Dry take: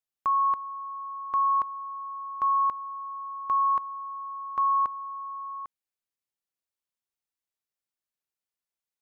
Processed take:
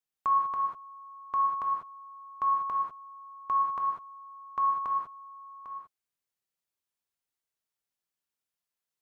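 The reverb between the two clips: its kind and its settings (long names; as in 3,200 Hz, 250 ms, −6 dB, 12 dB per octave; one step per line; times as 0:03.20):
reverb whose tail is shaped and stops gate 220 ms flat, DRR −0.5 dB
level −2 dB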